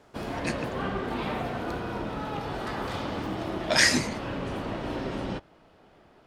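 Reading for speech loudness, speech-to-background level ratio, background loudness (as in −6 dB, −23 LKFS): −24.0 LKFS, 9.0 dB, −33.0 LKFS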